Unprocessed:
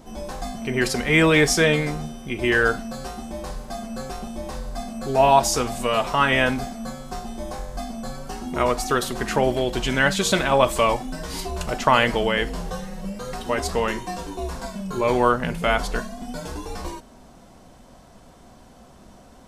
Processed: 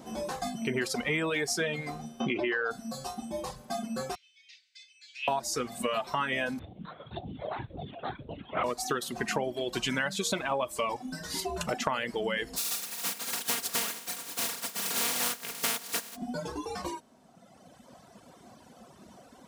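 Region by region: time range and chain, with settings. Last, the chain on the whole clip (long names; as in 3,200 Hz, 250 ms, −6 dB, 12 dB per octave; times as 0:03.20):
0:02.20–0:02.71: high-pass filter 250 Hz 6 dB per octave + high-frequency loss of the air 180 metres + envelope flattener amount 70%
0:04.15–0:05.28: elliptic high-pass filter 2,200 Hz, stop band 60 dB + high-frequency loss of the air 170 metres
0:06.59–0:08.64: all-pass phaser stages 2, 1.9 Hz, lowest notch 150–1,600 Hz + linear-prediction vocoder at 8 kHz whisper
0:12.56–0:16.15: compressing power law on the bin magnitudes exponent 0.11 + comb filter 4.3 ms, depth 67%
whole clip: reverb reduction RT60 1.9 s; high-pass filter 130 Hz 12 dB per octave; downward compressor 8 to 1, threshold −27 dBFS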